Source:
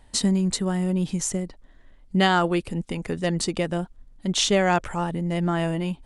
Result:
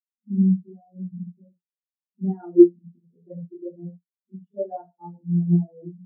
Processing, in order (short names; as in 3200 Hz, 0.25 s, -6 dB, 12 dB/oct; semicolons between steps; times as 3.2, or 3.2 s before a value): HPF 110 Hz 12 dB/oct; low shelf 140 Hz -8.5 dB; notches 60/120/180 Hz; compressor 2:1, threshold -27 dBFS, peak gain reduction 7 dB; air absorption 360 m; reverb, pre-delay 34 ms, DRR -16 dB; spectral expander 4:1; gain -1 dB